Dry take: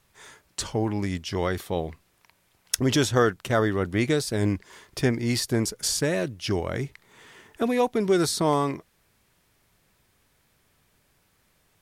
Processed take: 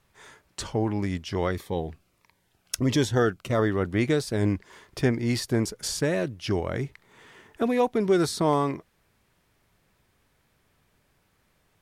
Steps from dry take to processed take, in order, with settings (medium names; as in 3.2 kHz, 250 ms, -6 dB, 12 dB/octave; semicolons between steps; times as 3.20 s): treble shelf 3.6 kHz -6.5 dB; 1.51–3.59 s: Shepard-style phaser falling 1.5 Hz